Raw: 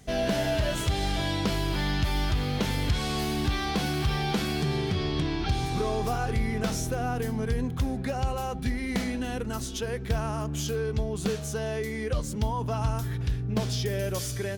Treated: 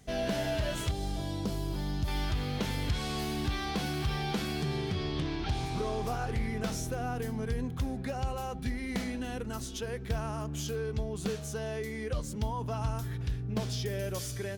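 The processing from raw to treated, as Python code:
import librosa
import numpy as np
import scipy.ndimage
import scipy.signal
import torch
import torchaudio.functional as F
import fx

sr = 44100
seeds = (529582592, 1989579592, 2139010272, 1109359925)

y = fx.peak_eq(x, sr, hz=2100.0, db=-12.5, octaves=2.0, at=(0.91, 2.08))
y = fx.doppler_dist(y, sr, depth_ms=0.25, at=(5.16, 6.48))
y = y * 10.0 ** (-5.0 / 20.0)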